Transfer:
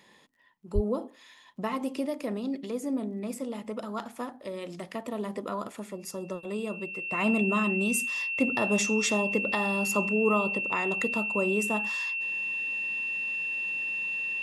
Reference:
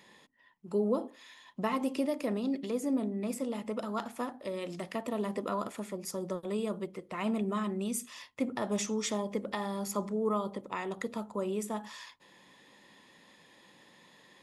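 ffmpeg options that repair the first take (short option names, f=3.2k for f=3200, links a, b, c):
-filter_complex "[0:a]adeclick=t=4,bandreject=f=2.7k:w=30,asplit=3[a][b][c];[a]afade=t=out:st=0.74:d=0.02[d];[b]highpass=f=140:w=0.5412,highpass=f=140:w=1.3066,afade=t=in:st=0.74:d=0.02,afade=t=out:st=0.86:d=0.02[e];[c]afade=t=in:st=0.86:d=0.02[f];[d][e][f]amix=inputs=3:normalize=0,asetnsamples=n=441:p=0,asendcmd='7.12 volume volume -5.5dB',volume=0dB"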